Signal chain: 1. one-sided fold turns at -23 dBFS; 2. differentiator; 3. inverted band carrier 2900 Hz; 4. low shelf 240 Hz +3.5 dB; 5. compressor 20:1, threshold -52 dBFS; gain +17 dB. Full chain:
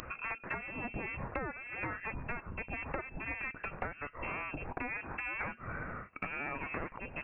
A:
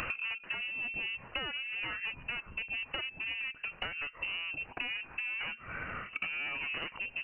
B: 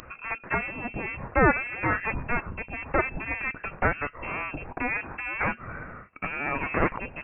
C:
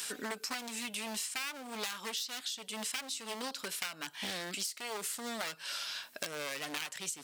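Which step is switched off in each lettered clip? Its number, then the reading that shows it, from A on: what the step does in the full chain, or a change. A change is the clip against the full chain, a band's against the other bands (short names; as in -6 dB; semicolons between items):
2, 2 kHz band +11.5 dB; 5, mean gain reduction 7.5 dB; 3, 125 Hz band -10.5 dB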